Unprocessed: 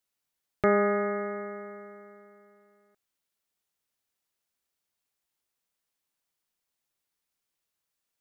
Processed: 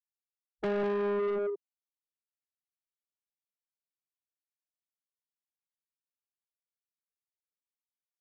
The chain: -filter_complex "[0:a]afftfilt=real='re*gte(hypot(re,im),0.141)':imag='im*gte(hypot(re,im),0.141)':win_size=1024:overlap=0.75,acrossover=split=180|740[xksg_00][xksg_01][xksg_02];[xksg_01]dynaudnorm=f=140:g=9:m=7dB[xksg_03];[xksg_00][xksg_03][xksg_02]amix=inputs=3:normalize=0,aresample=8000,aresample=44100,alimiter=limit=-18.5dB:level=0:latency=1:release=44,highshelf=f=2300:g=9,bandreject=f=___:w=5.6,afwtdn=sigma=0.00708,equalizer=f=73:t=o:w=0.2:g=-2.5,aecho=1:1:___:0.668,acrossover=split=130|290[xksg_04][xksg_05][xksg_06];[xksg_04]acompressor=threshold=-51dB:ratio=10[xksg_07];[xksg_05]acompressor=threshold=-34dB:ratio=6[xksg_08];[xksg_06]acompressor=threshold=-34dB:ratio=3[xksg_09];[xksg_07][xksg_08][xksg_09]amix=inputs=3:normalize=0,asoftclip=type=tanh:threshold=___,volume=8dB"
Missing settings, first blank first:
1200, 192, -36dB